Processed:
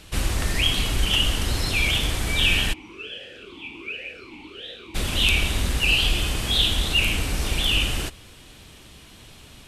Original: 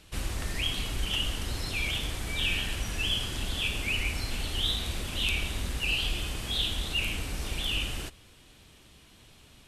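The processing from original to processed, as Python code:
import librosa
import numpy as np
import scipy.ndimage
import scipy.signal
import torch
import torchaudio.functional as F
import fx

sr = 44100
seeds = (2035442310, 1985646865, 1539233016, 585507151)

y = fx.vowel_sweep(x, sr, vowels='e-u', hz=fx.line((2.72, 0.91), (4.94, 1.9)), at=(2.72, 4.94), fade=0.02)
y = y * 10.0 ** (9.0 / 20.0)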